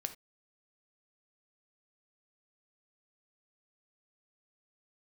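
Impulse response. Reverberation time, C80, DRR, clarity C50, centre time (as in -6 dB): no single decay rate, 19.5 dB, 7.5 dB, 13.0 dB, 7 ms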